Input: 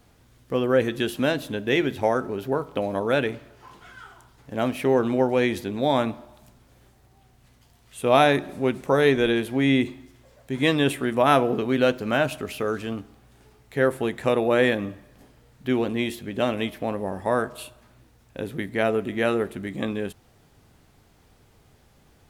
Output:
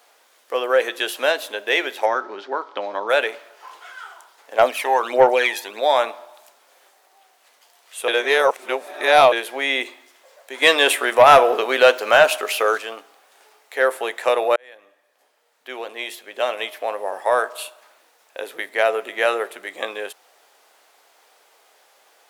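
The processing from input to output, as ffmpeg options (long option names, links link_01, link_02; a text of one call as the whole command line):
ffmpeg -i in.wav -filter_complex "[0:a]asplit=3[link_01][link_02][link_03];[link_01]afade=type=out:start_time=2.05:duration=0.02[link_04];[link_02]highpass=180,equalizer=frequency=210:width_type=q:width=4:gain=9,equalizer=frequency=330:width_type=q:width=4:gain=6,equalizer=frequency=470:width_type=q:width=4:gain=-8,equalizer=frequency=670:width_type=q:width=4:gain=-7,equalizer=frequency=2600:width_type=q:width=4:gain=-6,lowpass=frequency=5300:width=0.5412,lowpass=frequency=5300:width=1.3066,afade=type=in:start_time=2.05:duration=0.02,afade=type=out:start_time=3.08:duration=0.02[link_05];[link_03]afade=type=in:start_time=3.08:duration=0.02[link_06];[link_04][link_05][link_06]amix=inputs=3:normalize=0,asettb=1/sr,asplit=3[link_07][link_08][link_09];[link_07]atrim=end=4.584[link_10];[link_08]atrim=start=4.58:end=5.8,asetpts=PTS-STARTPTS,afade=type=in:duration=0.004:curve=qsin,afade=type=out:start_time=1.216:duration=0.004:curve=qsin,aphaser=in_gain=1:out_gain=1:delay=1.2:decay=0.62:speed=1.5:type=sinusoidal[link_11];[link_09]atrim=start=5.796[link_12];[link_10][link_11]acrossfade=duration=0.004:curve1=hsin:curve2=qsin[link_13];[link_13][link_12]acrossfade=duration=0.004:curve1=qsin:curve2=hsin,asettb=1/sr,asplit=3[link_14][link_15][link_16];[link_14]atrim=end=10.624[link_17];[link_15]atrim=start=10.62:end=12.78,asetpts=PTS-STARTPTS,afade=type=in:duration=0.004:curve=qsin,afade=type=out:start_time=2.156:duration=0.004:curve=qsin,acontrast=43[link_18];[link_16]atrim=start=12.776[link_19];[link_17][link_18]acrossfade=duration=0.004:curve1=hsin:curve2=qsin[link_20];[link_20][link_19]acrossfade=duration=0.004:curve1=qsin:curve2=hsin,asplit=4[link_21][link_22][link_23][link_24];[link_21]atrim=end=8.082[link_25];[link_22]atrim=start=8.078:end=9.322,asetpts=PTS-STARTPTS,areverse[link_26];[link_23]atrim=start=9.318:end=14.56,asetpts=PTS-STARTPTS,afade=type=out:start_time=5.238:duration=0.004:curve=hsin[link_27];[link_24]atrim=start=14.56,asetpts=PTS-STARTPTS,afade=type=in:duration=2.66[link_28];[link_25][link_26]acrossfade=duration=0.004:curve1=hsin:curve2=hsin[link_29];[link_27][link_28]concat=n=2:v=0:a=1[link_30];[link_29][link_30]acrossfade=duration=0.004:curve1=hsin:curve2=hsin,highpass=frequency=530:width=0.5412,highpass=frequency=530:width=1.3066,acontrast=86" out.wav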